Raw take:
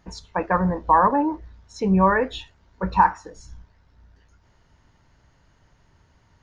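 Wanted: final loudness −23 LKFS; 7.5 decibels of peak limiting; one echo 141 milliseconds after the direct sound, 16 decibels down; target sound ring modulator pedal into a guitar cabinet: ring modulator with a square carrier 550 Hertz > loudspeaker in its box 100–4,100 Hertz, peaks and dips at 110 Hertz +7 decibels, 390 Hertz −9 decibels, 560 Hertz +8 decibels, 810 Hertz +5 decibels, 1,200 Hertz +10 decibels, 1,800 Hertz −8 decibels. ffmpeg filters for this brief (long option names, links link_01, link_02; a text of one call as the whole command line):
ffmpeg -i in.wav -af "alimiter=limit=-12dB:level=0:latency=1,aecho=1:1:141:0.158,aeval=exprs='val(0)*sgn(sin(2*PI*550*n/s))':channel_layout=same,highpass=100,equalizer=frequency=110:width_type=q:width=4:gain=7,equalizer=frequency=390:width_type=q:width=4:gain=-9,equalizer=frequency=560:width_type=q:width=4:gain=8,equalizer=frequency=810:width_type=q:width=4:gain=5,equalizer=frequency=1200:width_type=q:width=4:gain=10,equalizer=frequency=1800:width_type=q:width=4:gain=-8,lowpass=frequency=4100:width=0.5412,lowpass=frequency=4100:width=1.3066,volume=-2dB" out.wav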